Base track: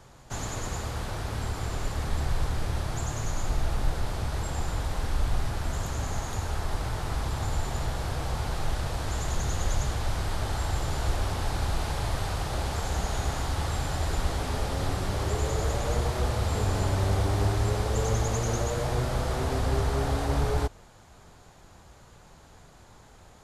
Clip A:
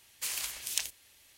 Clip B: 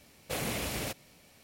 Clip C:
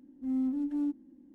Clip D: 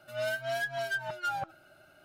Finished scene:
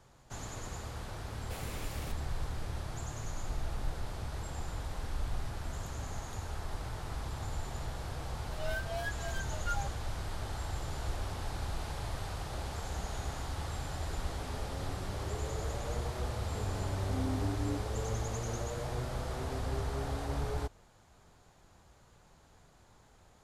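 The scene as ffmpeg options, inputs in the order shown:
-filter_complex "[0:a]volume=-9dB[a];[4:a]asplit=2[b][c];[c]adelay=10.9,afreqshift=1.6[d];[b][d]amix=inputs=2:normalize=1[e];[2:a]atrim=end=1.43,asetpts=PTS-STARTPTS,volume=-11.5dB,afade=t=in:d=0.004:c=hsin,afade=t=out:st=1.426:d=0.004:c=hsin,adelay=1200[f];[e]atrim=end=2.04,asetpts=PTS-STARTPTS,volume=-4dB,afade=t=in:d=0.004:c=hsin,afade=t=out:st=2.036:d=0.004:c=hsin,adelay=8430[g];[3:a]atrim=end=1.34,asetpts=PTS-STARTPTS,volume=-8dB,afade=t=in:d=0.004:c=hsin,afade=t=out:st=1.336:d=0.004:c=hsin,adelay=16870[h];[a][f][g][h]amix=inputs=4:normalize=0"

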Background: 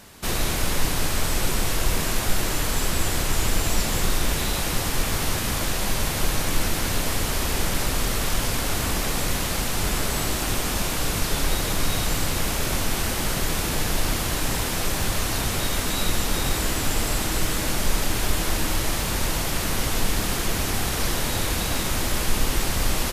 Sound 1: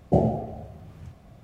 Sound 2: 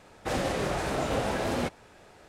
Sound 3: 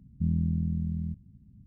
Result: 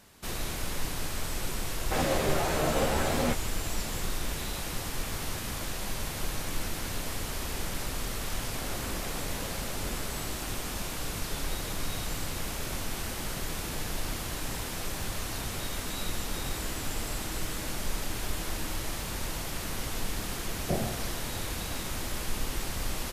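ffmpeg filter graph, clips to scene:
-filter_complex "[2:a]asplit=2[a][b];[0:a]volume=-10dB[c];[a]asplit=2[d][e];[e]adelay=13,volume=-3dB[f];[d][f]amix=inputs=2:normalize=0[g];[b]acrossover=split=170|820[h][i][j];[j]adelay=60[k];[i]adelay=300[l];[h][l][k]amix=inputs=3:normalize=0[m];[g]atrim=end=2.28,asetpts=PTS-STARTPTS,volume=-1dB,afade=t=in:d=0.004:c=hsin,afade=t=out:st=2.276:d=0.004:c=hsin,adelay=1650[n];[m]atrim=end=2.28,asetpts=PTS-STARTPTS,volume=-13dB,afade=t=in:d=0.004:c=hsin,afade=t=out:st=2.276:d=0.004:c=hsin,adelay=7980[o];[1:a]atrim=end=1.43,asetpts=PTS-STARTPTS,volume=-11dB,afade=t=in:d=0.004:c=hsin,afade=t=out:st=1.426:d=0.004:c=hsin,adelay=20570[p];[c][n][o][p]amix=inputs=4:normalize=0"

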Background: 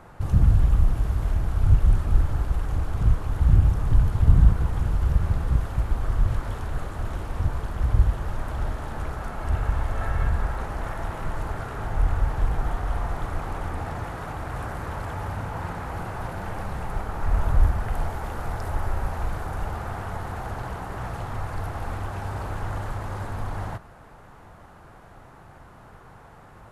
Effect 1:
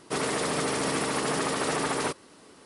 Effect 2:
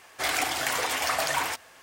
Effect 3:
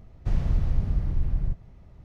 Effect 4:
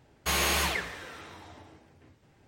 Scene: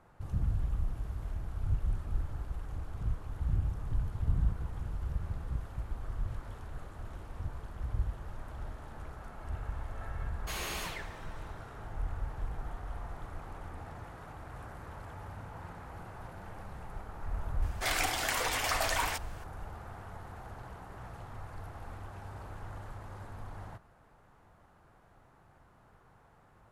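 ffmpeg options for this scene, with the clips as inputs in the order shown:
-filter_complex "[0:a]volume=-14dB[a];[4:a]flanger=delay=6.4:depth=2.7:regen=-61:speed=1.8:shape=sinusoidal,atrim=end=2.47,asetpts=PTS-STARTPTS,volume=-7.5dB,afade=t=in:d=0.004:c=hsin,afade=t=out:st=2.466:d=0.004:c=hsin,adelay=10210[b];[2:a]atrim=end=1.82,asetpts=PTS-STARTPTS,volume=-4.5dB,afade=t=in:d=0.004:c=hsin,afade=t=out:st=1.816:d=0.004:c=hsin,adelay=17620[c];[a][b][c]amix=inputs=3:normalize=0"

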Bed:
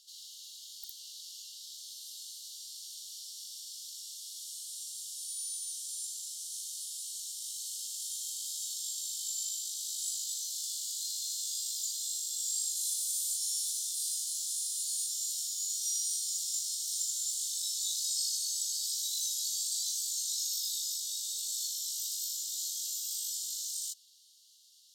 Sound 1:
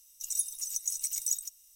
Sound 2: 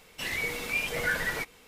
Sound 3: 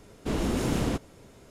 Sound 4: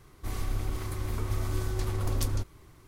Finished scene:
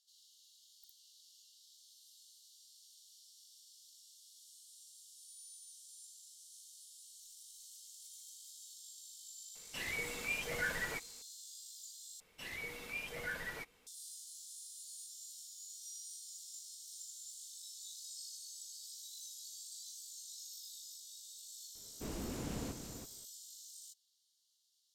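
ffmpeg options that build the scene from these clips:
-filter_complex "[2:a]asplit=2[a][b];[0:a]volume=-16dB[c];[1:a]acompressor=threshold=-43dB:ratio=6:attack=3.2:release=140:knee=1:detection=peak[d];[3:a]aecho=1:1:330:0.398[e];[c]asplit=2[f][g];[f]atrim=end=12.204[h];[b]atrim=end=1.67,asetpts=PTS-STARTPTS,volume=-13dB[i];[g]atrim=start=13.866[j];[d]atrim=end=1.75,asetpts=PTS-STARTPTS,volume=-17dB,afade=t=in:d=0.004:c=hsin,afade=t=out:st=1.746:d=0.004:c=hsin,adelay=7020[k];[a]atrim=end=1.67,asetpts=PTS-STARTPTS,volume=-8.5dB,afade=t=in:d=0.004:c=hsin,afade=t=out:st=1.666:d=0.004:c=hsin,adelay=9550[l];[e]atrim=end=1.5,asetpts=PTS-STARTPTS,volume=-15dB,afade=t=in:d=0.004:c=hsin,afade=t=out:st=1.496:d=0.004:c=hsin,adelay=21750[m];[h][i]acrossfade=d=0.004:c1=hsin:c2=hsin[n];[n][j]acrossfade=d=0.004:c1=hsin:c2=hsin[o];[o][k][l][m]amix=inputs=4:normalize=0"

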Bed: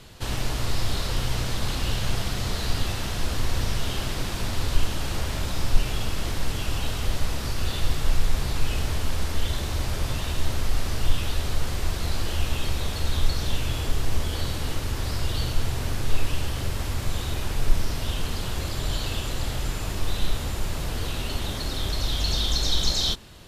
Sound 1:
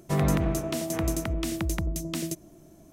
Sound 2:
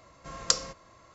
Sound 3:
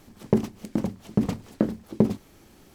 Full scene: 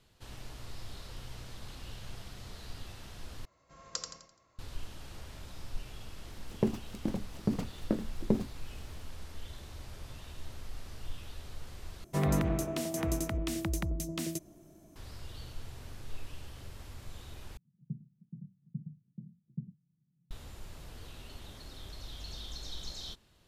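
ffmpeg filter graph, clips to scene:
-filter_complex "[3:a]asplit=2[a][b];[0:a]volume=-19dB[c];[2:a]aecho=1:1:85|170|255|340|425:0.562|0.219|0.0855|0.0334|0.013[d];[b]asuperpass=centerf=150:order=4:qfactor=3.9[e];[c]asplit=4[f][g][h][i];[f]atrim=end=3.454[j];[d]atrim=end=1.14,asetpts=PTS-STARTPTS,volume=-14dB[k];[g]atrim=start=4.586:end=12.044[l];[1:a]atrim=end=2.92,asetpts=PTS-STARTPTS,volume=-4.5dB[m];[h]atrim=start=14.956:end=17.574[n];[e]atrim=end=2.74,asetpts=PTS-STARTPTS,volume=-8.5dB[o];[i]atrim=start=20.306[p];[a]atrim=end=2.74,asetpts=PTS-STARTPTS,volume=-8dB,afade=t=in:d=0.004:c=hsin,afade=t=out:st=2.736:d=0.004:c=hsin,adelay=6300[q];[j][k]acrossfade=d=0.004:c1=hsin:c2=hsin[r];[r][l]acrossfade=d=0.004:c1=hsin:c2=hsin[s];[s][m]acrossfade=d=0.004:c1=hsin:c2=hsin[t];[t][n]acrossfade=d=0.004:c1=hsin:c2=hsin[u];[u][o]acrossfade=d=0.004:c1=hsin:c2=hsin[v];[v][p]acrossfade=d=0.004:c1=hsin:c2=hsin[w];[w][q]amix=inputs=2:normalize=0"

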